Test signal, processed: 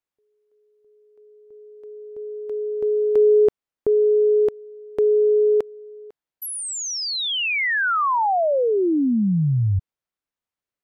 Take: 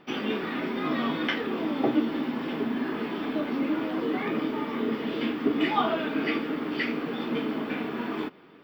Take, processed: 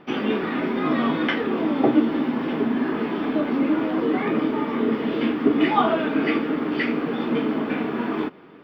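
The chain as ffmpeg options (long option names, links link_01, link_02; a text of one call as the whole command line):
ffmpeg -i in.wav -af "highshelf=frequency=3700:gain=-12,volume=6.5dB" out.wav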